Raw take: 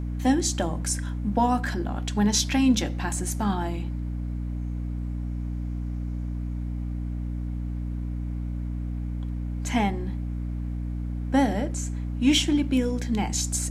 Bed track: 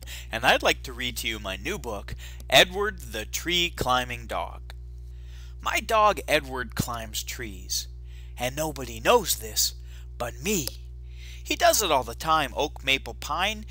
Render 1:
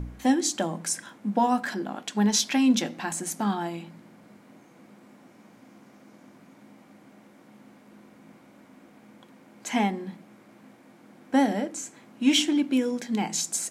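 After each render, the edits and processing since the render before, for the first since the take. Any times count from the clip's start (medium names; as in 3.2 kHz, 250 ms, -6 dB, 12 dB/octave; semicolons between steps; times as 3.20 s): de-hum 60 Hz, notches 5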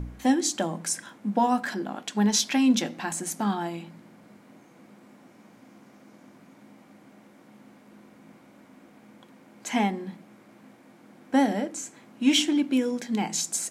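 no audible change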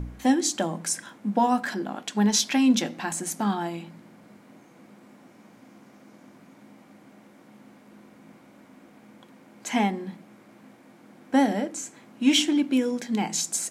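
trim +1 dB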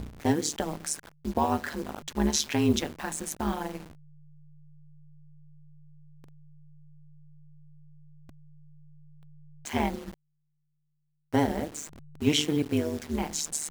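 send-on-delta sampling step -36.5 dBFS; AM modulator 150 Hz, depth 95%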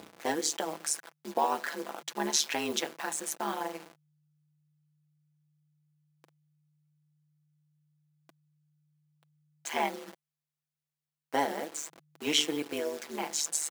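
high-pass 450 Hz 12 dB/octave; comb 6 ms, depth 38%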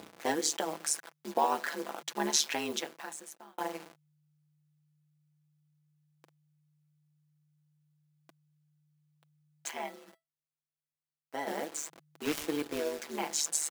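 2.35–3.58 s: fade out; 9.71–11.47 s: feedback comb 660 Hz, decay 0.19 s, mix 70%; 12.25–12.99 s: dead-time distortion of 0.17 ms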